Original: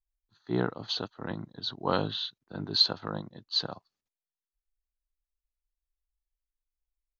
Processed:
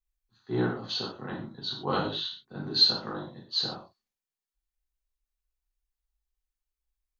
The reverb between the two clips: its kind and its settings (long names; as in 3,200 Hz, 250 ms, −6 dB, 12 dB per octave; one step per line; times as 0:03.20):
reverb whose tail is shaped and stops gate 160 ms falling, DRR −4.5 dB
level −5 dB